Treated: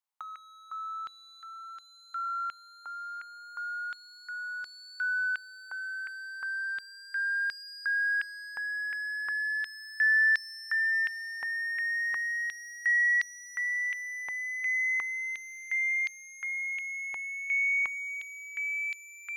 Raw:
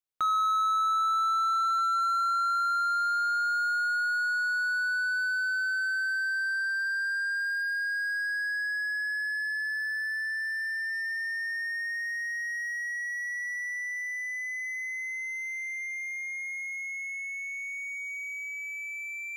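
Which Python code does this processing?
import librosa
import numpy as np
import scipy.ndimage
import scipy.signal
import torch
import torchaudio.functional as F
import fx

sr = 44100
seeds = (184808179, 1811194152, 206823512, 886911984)

y = fx.over_compress(x, sr, threshold_db=-32.0, ratio=-0.5)
y = fx.filter_held_highpass(y, sr, hz=2.8, low_hz=880.0, high_hz=4600.0)
y = y * librosa.db_to_amplitude(-5.0)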